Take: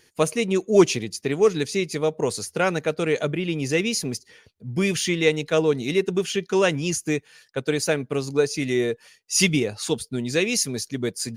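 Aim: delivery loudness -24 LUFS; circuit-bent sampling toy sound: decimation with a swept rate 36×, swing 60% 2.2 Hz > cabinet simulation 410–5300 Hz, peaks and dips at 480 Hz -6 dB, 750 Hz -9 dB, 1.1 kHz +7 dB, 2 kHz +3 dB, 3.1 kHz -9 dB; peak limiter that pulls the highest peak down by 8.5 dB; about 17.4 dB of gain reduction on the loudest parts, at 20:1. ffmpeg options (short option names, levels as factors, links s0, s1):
-af "acompressor=threshold=0.0501:ratio=20,alimiter=limit=0.0631:level=0:latency=1,acrusher=samples=36:mix=1:aa=0.000001:lfo=1:lforange=21.6:lforate=2.2,highpass=410,equalizer=f=480:t=q:w=4:g=-6,equalizer=f=750:t=q:w=4:g=-9,equalizer=f=1100:t=q:w=4:g=7,equalizer=f=2000:t=q:w=4:g=3,equalizer=f=3100:t=q:w=4:g=-9,lowpass=f=5300:w=0.5412,lowpass=f=5300:w=1.3066,volume=5.62"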